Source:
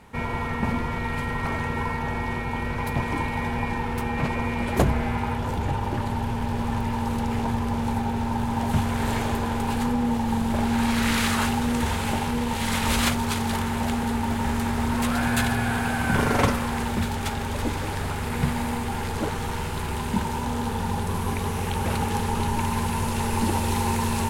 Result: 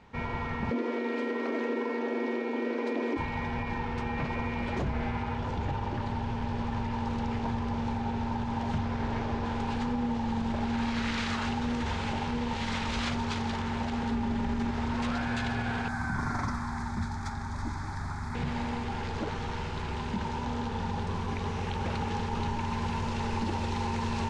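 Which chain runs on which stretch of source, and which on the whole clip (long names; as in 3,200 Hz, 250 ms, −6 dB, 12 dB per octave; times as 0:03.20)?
0:00.71–0:03.17: linear-phase brick-wall high-pass 230 Hz + low shelf with overshoot 650 Hz +9 dB, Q 1.5 + notch filter 850 Hz, Q 13
0:08.78–0:09.45: linear delta modulator 64 kbit/s, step −27 dBFS + low-pass filter 1,700 Hz 6 dB per octave
0:14.11–0:14.71: low-shelf EQ 380 Hz +6.5 dB + comb filter 5 ms, depth 33%
0:15.88–0:18.35: high-shelf EQ 9,700 Hz +10 dB + phaser with its sweep stopped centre 1,200 Hz, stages 4
whole clip: low-pass filter 5,900 Hz 24 dB per octave; brickwall limiter −16.5 dBFS; level −5.5 dB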